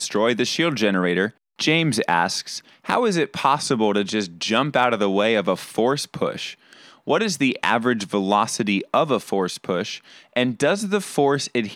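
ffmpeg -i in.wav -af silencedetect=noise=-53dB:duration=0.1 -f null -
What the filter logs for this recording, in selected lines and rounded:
silence_start: 1.37
silence_end: 1.59 | silence_duration: 0.22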